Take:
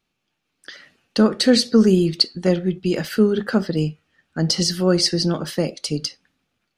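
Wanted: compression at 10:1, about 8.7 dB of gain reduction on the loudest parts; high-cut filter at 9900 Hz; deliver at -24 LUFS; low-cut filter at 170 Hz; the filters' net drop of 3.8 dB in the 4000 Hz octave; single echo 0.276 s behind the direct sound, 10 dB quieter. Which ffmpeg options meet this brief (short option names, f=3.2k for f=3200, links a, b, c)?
-af "highpass=170,lowpass=9.9k,equalizer=f=4k:t=o:g=-4.5,acompressor=threshold=-19dB:ratio=10,aecho=1:1:276:0.316,volume=1.5dB"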